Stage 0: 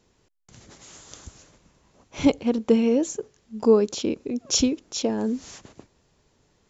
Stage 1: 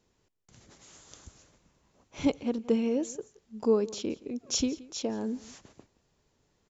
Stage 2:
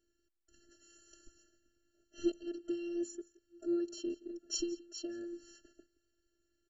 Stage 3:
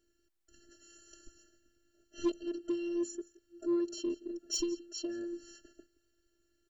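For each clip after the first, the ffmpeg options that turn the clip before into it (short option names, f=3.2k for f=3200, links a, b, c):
-af "aecho=1:1:172:0.0944,volume=-7.5dB"
-af "afftfilt=real='hypot(re,im)*cos(PI*b)':imag='0':win_size=512:overlap=0.75,afftfilt=real='re*eq(mod(floor(b*sr/1024/670),2),0)':imag='im*eq(mod(floor(b*sr/1024/670),2),0)':win_size=1024:overlap=0.75,volume=-3dB"
-af "asoftclip=type=tanh:threshold=-27dB,volume=4dB"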